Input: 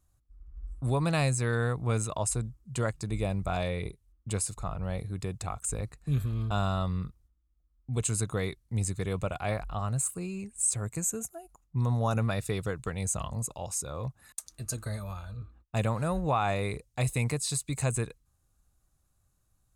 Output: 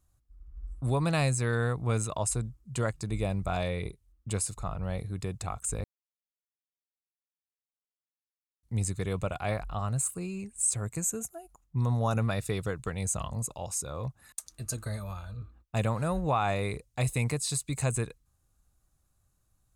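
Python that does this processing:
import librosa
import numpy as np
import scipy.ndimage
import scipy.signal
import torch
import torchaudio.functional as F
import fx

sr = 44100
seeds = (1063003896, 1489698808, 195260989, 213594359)

y = fx.edit(x, sr, fx.silence(start_s=5.84, length_s=2.79), tone=tone)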